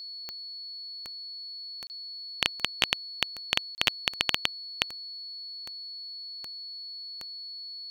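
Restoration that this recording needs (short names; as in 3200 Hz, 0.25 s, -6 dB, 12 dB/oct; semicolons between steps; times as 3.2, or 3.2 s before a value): de-click; notch 4400 Hz, Q 30; interpolate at 1.87/3.75, 29 ms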